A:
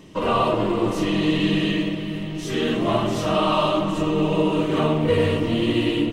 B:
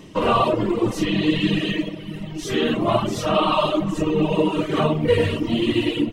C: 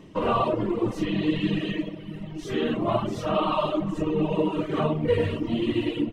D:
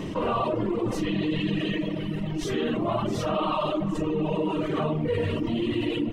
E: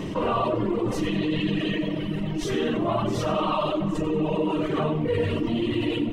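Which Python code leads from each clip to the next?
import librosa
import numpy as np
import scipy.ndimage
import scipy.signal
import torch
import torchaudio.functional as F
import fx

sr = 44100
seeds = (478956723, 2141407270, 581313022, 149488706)

y1 = fx.dereverb_blind(x, sr, rt60_s=1.8)
y1 = F.gain(torch.from_numpy(y1), 3.5).numpy()
y2 = fx.high_shelf(y1, sr, hz=3100.0, db=-9.5)
y2 = F.gain(torch.from_numpy(y2), -4.5).numpy()
y3 = fx.env_flatten(y2, sr, amount_pct=70)
y3 = F.gain(torch.from_numpy(y3), -6.0).numpy()
y4 = fx.echo_feedback(y3, sr, ms=94, feedback_pct=46, wet_db=-14)
y4 = F.gain(torch.from_numpy(y4), 1.5).numpy()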